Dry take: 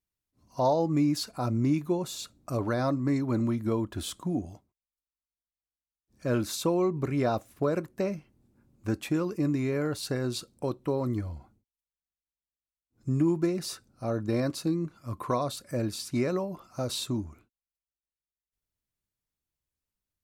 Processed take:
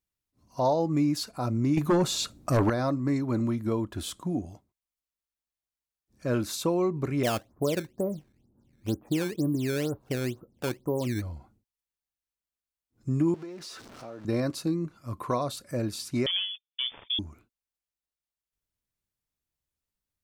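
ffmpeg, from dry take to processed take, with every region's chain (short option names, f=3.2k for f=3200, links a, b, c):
-filter_complex "[0:a]asettb=1/sr,asplit=3[a][b][c];[a]atrim=end=1.774[d];[b]atrim=start=1.77:end=2.7,asetpts=PTS-STARTPTS,afade=t=in:d=0.004:c=qsin,afade=t=out:st=0.926:d=0.004:c=qsin,acrossover=split=7900[e][f];[f]acompressor=threshold=-53dB:ratio=4:attack=1:release=60[g];[e][g]amix=inputs=2:normalize=0,aeval=exprs='0.133*sin(PI/2*2*val(0)/0.133)':c=same[h];[c]atrim=start=2.696[i];[d][h]acrossfade=d=0.004:c1=hsin:c2=qsin[j];[j][i]acrossfade=d=0.004:c1=qsin:c2=hsin,asettb=1/sr,asplit=3[k][l][m];[k]atrim=end=7.234[n];[l]atrim=start=7.23:end=11.22,asetpts=PTS-STARTPTS,afade=t=in:d=0.004:c=qsin,afade=t=out:st=3.986:d=0.004:c=qsin,lowpass=f=1k:w=0.5412,lowpass=f=1k:w=1.3066,acrusher=samples=13:mix=1:aa=0.000001:lfo=1:lforange=20.8:lforate=2.1[o];[m]atrim=start=11.216[p];[n][o]acrossfade=d=0.004:c1=hsin:c2=qsin[q];[q][p]acrossfade=d=0.004:c1=qsin:c2=hsin,asettb=1/sr,asplit=3[r][s][t];[r]atrim=end=13.344[u];[s]atrim=start=13.34:end=14.25,asetpts=PTS-STARTPTS,afade=t=in:d=0.004:c=qsin,afade=t=out:st=0.906:d=0.004:c=qsin,aeval=exprs='val(0)+0.5*0.0112*sgn(val(0))':c=same,acrossover=split=240 7000:gain=0.251 1 0.251[v][w][x];[v][w][x]amix=inputs=3:normalize=0,acompressor=threshold=-41dB:ratio=3:attack=3.2:release=140:knee=1:detection=peak[y];[t]atrim=start=14.246[z];[u][y]acrossfade=d=0.004:c1=hsin:c2=qsin[aa];[aa][z]acrossfade=d=0.004:c1=qsin:c2=hsin,asettb=1/sr,asplit=3[ab][ac][ad];[ab]atrim=end=16.264[ae];[ac]atrim=start=16.26:end=17.19,asetpts=PTS-STARTPTS,afade=t=in:d=0.004:c=qsin,afade=t=out:st=0.926:d=0.004:c=qsin,agate=range=-37dB:threshold=-43dB:ratio=16:release=100:detection=peak,adynamicsmooth=sensitivity=5.5:basefreq=580,lowpass=f=3.1k:t=q:w=0.5098,lowpass=f=3.1k:t=q:w=0.6013,lowpass=f=3.1k:t=q:w=0.9,lowpass=f=3.1k:t=q:w=2.563,afreqshift=-3600[af];[ad]atrim=start=17.186[ag];[ae][af]acrossfade=d=0.004:c1=hsin:c2=qsin[ah];[ah][ag]acrossfade=d=0.004:c1=qsin:c2=hsin"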